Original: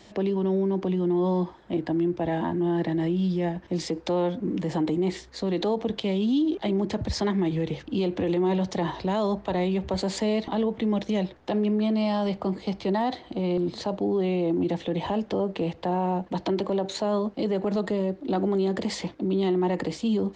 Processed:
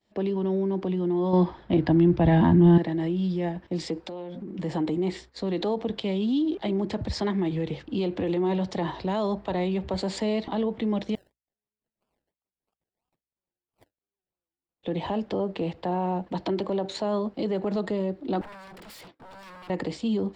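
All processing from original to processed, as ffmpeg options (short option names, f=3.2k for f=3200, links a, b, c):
-filter_complex "[0:a]asettb=1/sr,asplit=3[a][b][c];[a]atrim=end=1.334[d];[b]atrim=start=1.33:end=2.78,asetpts=PTS-STARTPTS,afade=t=in:d=0.004:c=qsin,afade=t=out:st=1.446:d=0.004:c=qsin,lowpass=f=6k:w=0.5412,lowpass=f=6k:w=1.3066,asubboost=boost=11:cutoff=190,acontrast=81[e];[c]atrim=start=2.776[f];[d][e]acrossfade=d=0.004:c1=hsin:c2=qsin[g];[g][f]acrossfade=d=0.004:c1=qsin:c2=hsin,asettb=1/sr,asplit=3[h][i][j];[h]atrim=end=4.004[k];[i]atrim=start=4:end=4.59,asetpts=PTS-STARTPTS,afade=t=in:d=0.004:c=qsin,afade=t=out:st=0.586:d=0.004:c=qsin,bandreject=f=60:t=h:w=6,bandreject=f=120:t=h:w=6,bandreject=f=180:t=h:w=6,bandreject=f=240:t=h:w=6,bandreject=f=300:t=h:w=6,bandreject=f=360:t=h:w=6,bandreject=f=420:t=h:w=6,bandreject=f=480:t=h:w=6,bandreject=f=540:t=h:w=6,bandreject=f=600:t=h:w=6,aecho=1:1:5.3:0.37,atrim=end_sample=26019,acompressor=threshold=-31dB:ratio=12:attack=3.2:release=140:knee=1:detection=peak[l];[j]atrim=start=4.586[m];[k][l]acrossfade=d=0.004:c1=hsin:c2=qsin[n];[n][m]acrossfade=d=0.004:c1=qsin:c2=hsin,asettb=1/sr,asplit=3[o][p][q];[o]atrim=end=11.154[r];[p]atrim=start=11.15:end=14.83,asetpts=PTS-STARTPTS,afade=t=in:d=0.004:c=qsin,afade=t=out:st=3.676:d=0.004:c=qsin,bandpass=f=5.6k:t=q:w=5.9,acrusher=samples=31:mix=1:aa=0.000001:lfo=1:lforange=18.6:lforate=3,aeval=exprs='val(0)+0.000251*(sin(2*PI*60*n/s)+sin(2*PI*2*60*n/s)/2+sin(2*PI*3*60*n/s)/3+sin(2*PI*4*60*n/s)/4+sin(2*PI*5*60*n/s)/5)':c=same[s];[q]atrim=start=14.826[t];[r][s]acrossfade=d=0.004:c1=hsin:c2=qsin[u];[u][t]acrossfade=d=0.004:c1=qsin:c2=hsin,asettb=1/sr,asplit=3[v][w][x];[v]atrim=end=18.414[y];[w]atrim=start=18.41:end=19.7,asetpts=PTS-STARTPTS,afade=t=in:d=0.004:c=qsin,afade=t=out:st=1.286:d=0.004:c=qsin,highpass=f=270:p=1,acompressor=threshold=-33dB:ratio=2:attack=3.2:release=140:knee=1:detection=peak,aeval=exprs='0.015*(abs(mod(val(0)/0.015+3,4)-2)-1)':c=same[z];[x]atrim=start=19.696[aa];[y][z]acrossfade=d=0.004:c1=hsin:c2=qsin[ab];[ab][aa]acrossfade=d=0.004:c1=qsin:c2=hsin,agate=range=-33dB:threshold=-38dB:ratio=3:detection=peak,equalizer=f=6.3k:w=7.3:g=-9,volume=-1.5dB"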